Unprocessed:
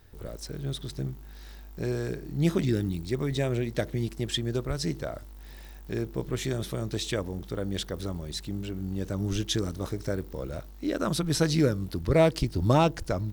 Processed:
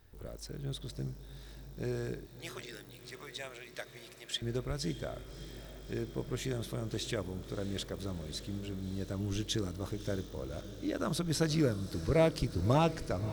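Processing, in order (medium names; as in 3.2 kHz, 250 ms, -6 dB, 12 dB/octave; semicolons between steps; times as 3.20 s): 2.26–4.42 s: high-pass 960 Hz 12 dB/octave; echo that smears into a reverb 621 ms, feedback 71%, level -14 dB; trim -6 dB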